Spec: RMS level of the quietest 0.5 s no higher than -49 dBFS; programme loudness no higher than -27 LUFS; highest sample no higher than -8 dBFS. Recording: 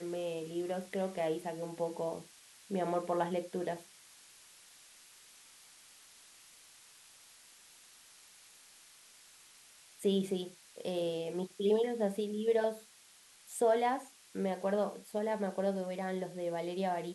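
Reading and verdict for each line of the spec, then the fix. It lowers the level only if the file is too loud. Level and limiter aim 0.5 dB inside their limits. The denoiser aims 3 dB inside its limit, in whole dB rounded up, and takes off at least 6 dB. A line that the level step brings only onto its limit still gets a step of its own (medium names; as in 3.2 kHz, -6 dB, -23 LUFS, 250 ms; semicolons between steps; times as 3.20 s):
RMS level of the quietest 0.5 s -61 dBFS: pass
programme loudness -35.5 LUFS: pass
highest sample -18.5 dBFS: pass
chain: none needed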